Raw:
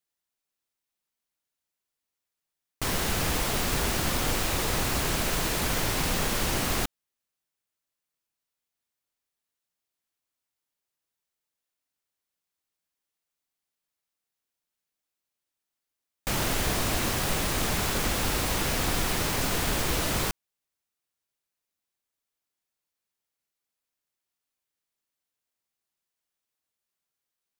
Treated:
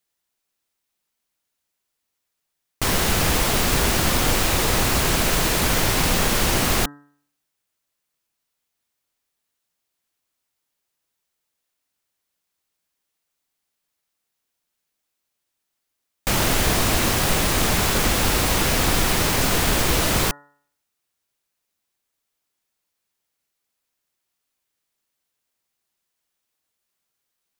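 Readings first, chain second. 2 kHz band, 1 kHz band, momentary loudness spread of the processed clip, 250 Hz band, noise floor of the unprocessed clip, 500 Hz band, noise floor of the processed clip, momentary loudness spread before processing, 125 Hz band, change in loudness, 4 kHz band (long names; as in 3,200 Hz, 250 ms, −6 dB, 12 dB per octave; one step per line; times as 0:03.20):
+7.5 dB, +7.5 dB, 3 LU, +7.5 dB, below −85 dBFS, +7.5 dB, −79 dBFS, 3 LU, +7.5 dB, +7.5 dB, +7.5 dB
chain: hum removal 144 Hz, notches 13
level +7.5 dB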